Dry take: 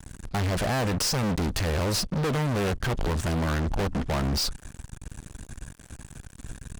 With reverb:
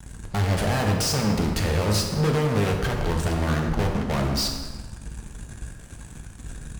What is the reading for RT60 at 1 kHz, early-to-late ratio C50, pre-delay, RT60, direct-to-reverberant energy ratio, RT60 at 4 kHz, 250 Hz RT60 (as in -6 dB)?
1.4 s, 4.5 dB, 3 ms, 1.4 s, 1.0 dB, 1.0 s, 1.5 s